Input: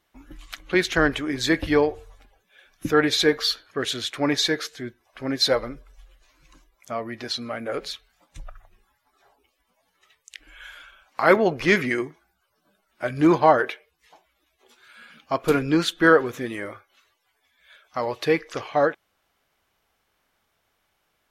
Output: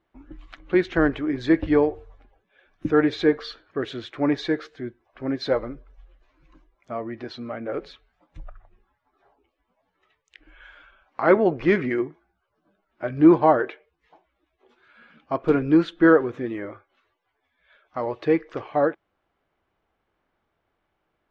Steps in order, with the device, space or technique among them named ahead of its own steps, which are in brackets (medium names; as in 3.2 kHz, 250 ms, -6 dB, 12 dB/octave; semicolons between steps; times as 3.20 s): phone in a pocket (low-pass 3.7 kHz 12 dB/octave; peaking EQ 330 Hz +5 dB 0.34 oct; treble shelf 2 kHz -12 dB)